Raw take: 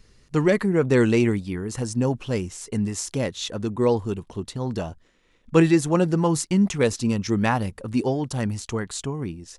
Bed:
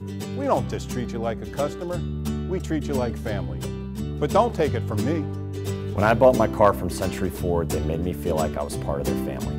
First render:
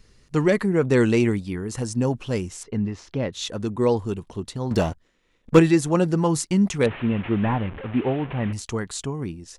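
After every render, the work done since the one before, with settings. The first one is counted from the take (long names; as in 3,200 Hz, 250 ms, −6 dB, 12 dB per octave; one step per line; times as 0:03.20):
0:02.63–0:03.33: high-frequency loss of the air 260 metres
0:04.71–0:05.59: leveller curve on the samples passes 2
0:06.86–0:08.53: linear delta modulator 16 kbit/s, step −30.5 dBFS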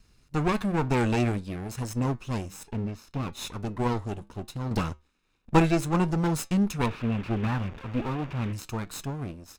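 lower of the sound and its delayed copy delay 0.77 ms
flanger 0.63 Hz, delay 6.2 ms, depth 2 ms, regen −83%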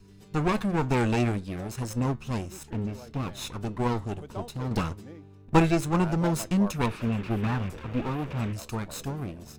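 mix in bed −21 dB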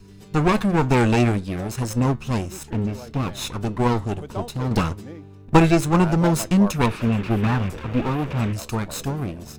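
level +7 dB
brickwall limiter −3 dBFS, peak gain reduction 2.5 dB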